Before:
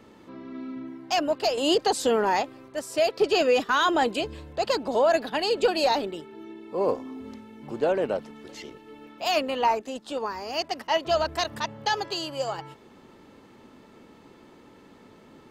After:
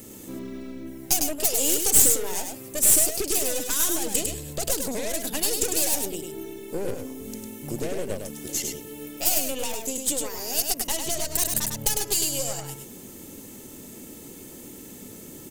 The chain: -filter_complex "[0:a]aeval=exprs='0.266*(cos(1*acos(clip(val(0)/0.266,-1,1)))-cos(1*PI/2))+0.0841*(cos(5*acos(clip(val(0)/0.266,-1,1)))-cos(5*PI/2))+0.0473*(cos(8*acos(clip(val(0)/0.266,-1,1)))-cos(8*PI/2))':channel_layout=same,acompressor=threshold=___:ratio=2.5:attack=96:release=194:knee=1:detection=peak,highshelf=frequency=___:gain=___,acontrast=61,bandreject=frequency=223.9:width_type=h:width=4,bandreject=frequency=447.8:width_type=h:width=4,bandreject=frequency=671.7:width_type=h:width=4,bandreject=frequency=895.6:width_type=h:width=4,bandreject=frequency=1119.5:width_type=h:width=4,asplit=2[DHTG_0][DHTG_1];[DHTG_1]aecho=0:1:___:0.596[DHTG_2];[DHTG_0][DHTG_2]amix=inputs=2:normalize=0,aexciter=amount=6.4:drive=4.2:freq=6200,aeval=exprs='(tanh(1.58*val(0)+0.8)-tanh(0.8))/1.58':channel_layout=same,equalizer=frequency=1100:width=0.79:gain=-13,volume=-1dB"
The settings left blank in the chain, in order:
-35dB, 8300, 8.5, 102